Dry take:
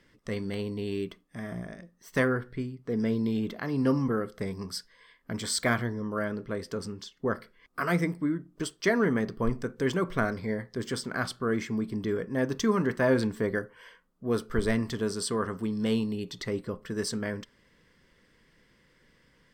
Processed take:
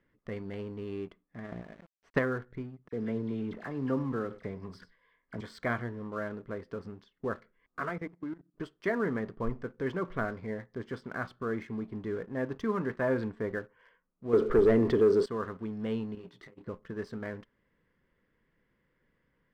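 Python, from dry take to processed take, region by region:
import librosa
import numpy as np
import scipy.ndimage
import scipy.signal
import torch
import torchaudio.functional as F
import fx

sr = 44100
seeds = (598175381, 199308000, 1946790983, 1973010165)

y = fx.chain(x, sr, fx.low_shelf(hz=87.0, db=-2.0),
    fx.transient(attack_db=8, sustain_db=-5),
    fx.quant_dither(seeds[0], bits=8, dither='none'), at=(1.44, 2.19))
y = fx.chain(y, sr, fx.dispersion(late='lows', ms=44.0, hz=2200.0),
    fx.echo_single(ms=95, db=-20.5),
    fx.sustainer(db_per_s=130.0), at=(2.88, 5.41))
y = fx.chain(y, sr, fx.highpass(hz=160.0, slope=12),
    fx.level_steps(step_db=15), at=(7.89, 8.54))
y = fx.chain(y, sr, fx.peak_eq(hz=400.0, db=14.5, octaves=1.2),
    fx.env_flatten(amount_pct=50), at=(14.33, 15.26))
y = fx.chain(y, sr, fx.low_shelf(hz=130.0, db=-12.0),
    fx.over_compress(threshold_db=-37.0, ratio=-0.5),
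    fx.detune_double(cents=36), at=(16.15, 16.66))
y = scipy.signal.sosfilt(scipy.signal.butter(2, 2000.0, 'lowpass', fs=sr, output='sos'), y)
y = fx.dynamic_eq(y, sr, hz=190.0, q=0.74, threshold_db=-36.0, ratio=4.0, max_db=-3)
y = fx.leveller(y, sr, passes=1)
y = y * librosa.db_to_amplitude(-7.5)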